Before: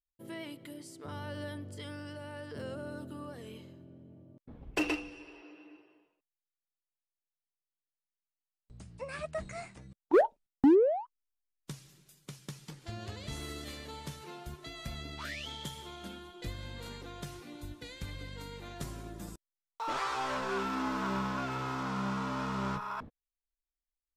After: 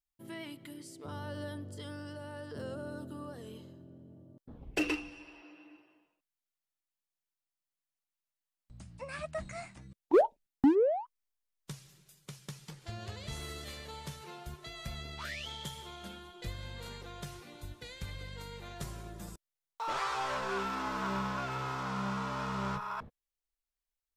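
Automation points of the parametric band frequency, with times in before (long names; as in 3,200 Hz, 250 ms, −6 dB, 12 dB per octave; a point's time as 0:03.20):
parametric band −11 dB 0.39 octaves
0:00.71 490 Hz
0:01.13 2,300 Hz
0:04.54 2,300 Hz
0:05.07 420 Hz
0:09.75 420 Hz
0:10.21 1,900 Hz
0:10.82 280 Hz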